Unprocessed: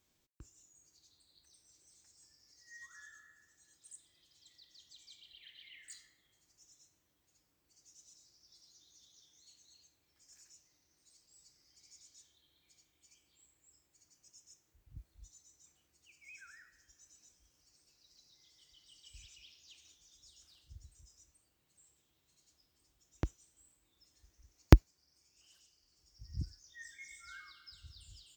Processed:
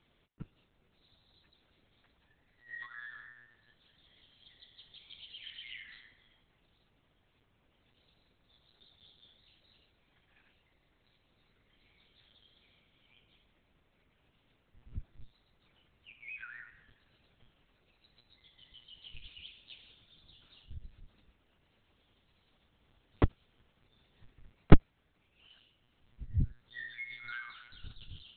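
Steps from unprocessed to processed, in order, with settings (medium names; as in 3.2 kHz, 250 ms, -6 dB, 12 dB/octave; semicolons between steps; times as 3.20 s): monotone LPC vocoder at 8 kHz 120 Hz; loudness maximiser +10.5 dB; trim -1 dB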